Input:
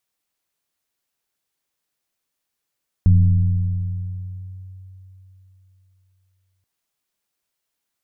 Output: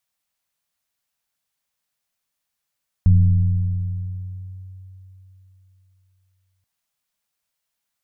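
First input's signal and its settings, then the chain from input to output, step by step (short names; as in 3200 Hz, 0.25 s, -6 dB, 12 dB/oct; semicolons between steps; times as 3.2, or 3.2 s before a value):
FM tone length 3.58 s, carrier 94.2 Hz, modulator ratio 0.87, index 0.64, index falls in 1.90 s linear, decay 3.59 s, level -8 dB
bell 360 Hz -13 dB 0.54 oct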